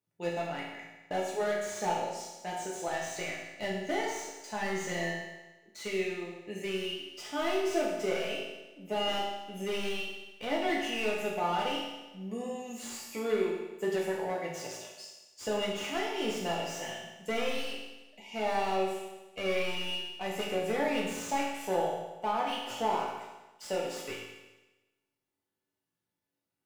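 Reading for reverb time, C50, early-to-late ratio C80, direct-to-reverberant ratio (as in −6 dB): 1.1 s, 1.5 dB, 4.0 dB, −5.0 dB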